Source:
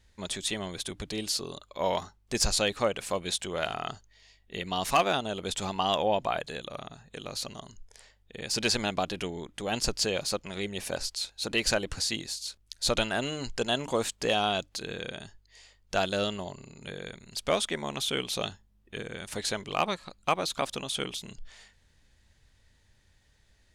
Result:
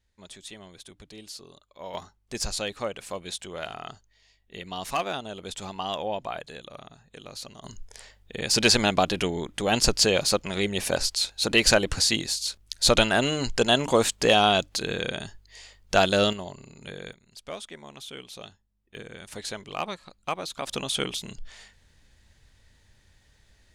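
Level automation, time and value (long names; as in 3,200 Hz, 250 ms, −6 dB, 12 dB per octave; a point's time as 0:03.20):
−11 dB
from 0:01.94 −4 dB
from 0:07.64 +7.5 dB
from 0:16.33 +0.5 dB
from 0:17.13 −10.5 dB
from 0:18.95 −3.5 dB
from 0:20.67 +4.5 dB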